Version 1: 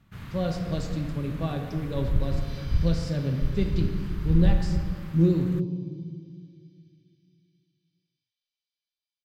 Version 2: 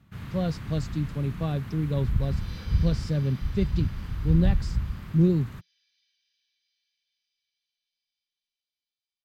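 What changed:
speech: send off
first sound: add high-pass filter 42 Hz
master: add low-shelf EQ 410 Hz +3 dB

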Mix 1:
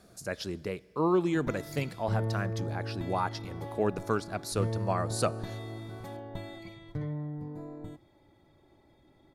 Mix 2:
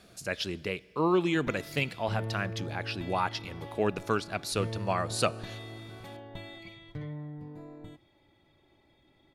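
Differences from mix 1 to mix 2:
background −4.0 dB
master: add parametric band 2,800 Hz +11 dB 1.1 octaves

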